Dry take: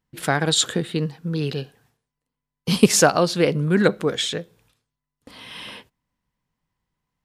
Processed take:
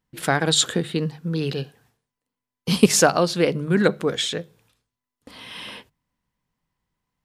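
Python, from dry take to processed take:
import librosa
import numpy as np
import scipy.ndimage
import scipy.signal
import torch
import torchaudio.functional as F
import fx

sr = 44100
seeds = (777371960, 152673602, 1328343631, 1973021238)

p1 = fx.hum_notches(x, sr, base_hz=50, count=3)
p2 = fx.rider(p1, sr, range_db=4, speed_s=2.0)
p3 = p1 + (p2 * 10.0 ** (-2.0 / 20.0))
y = p3 * 10.0 ** (-6.0 / 20.0)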